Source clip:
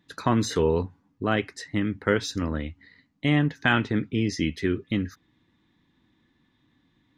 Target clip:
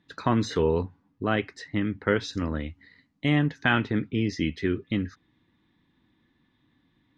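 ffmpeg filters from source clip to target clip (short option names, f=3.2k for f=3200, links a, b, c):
-af "asetnsamples=n=441:p=0,asendcmd='2.33 lowpass f 7900;3.64 lowpass f 4800',lowpass=4.8k,volume=-1dB"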